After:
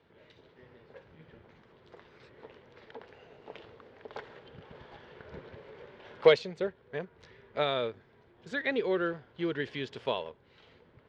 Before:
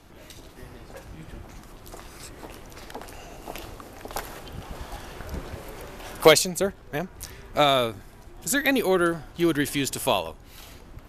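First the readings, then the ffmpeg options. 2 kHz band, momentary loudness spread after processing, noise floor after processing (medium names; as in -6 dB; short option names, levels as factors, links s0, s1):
-8.5 dB, 25 LU, -63 dBFS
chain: -filter_complex "[0:a]asplit=2[s0][s1];[s1]acrusher=bits=4:mix=0:aa=0.5,volume=0.282[s2];[s0][s2]amix=inputs=2:normalize=0,highpass=140,equalizer=f=200:t=q:w=4:g=-4,equalizer=f=300:t=q:w=4:g=-9,equalizer=f=450:t=q:w=4:g=6,equalizer=f=730:t=q:w=4:g=-8,equalizer=f=1200:t=q:w=4:g=-6,equalizer=f=2600:t=q:w=4:g=-5,lowpass=f=3400:w=0.5412,lowpass=f=3400:w=1.3066,volume=0.376"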